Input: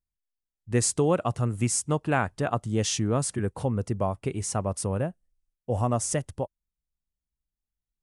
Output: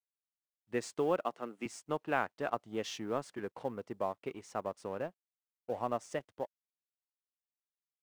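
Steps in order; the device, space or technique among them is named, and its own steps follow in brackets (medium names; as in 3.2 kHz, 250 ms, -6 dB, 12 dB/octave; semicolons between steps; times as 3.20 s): phone line with mismatched companding (band-pass 320–3600 Hz; companding laws mixed up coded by A); 1.23–1.66 s: high-pass 190 Hz 24 dB/octave; trim -5.5 dB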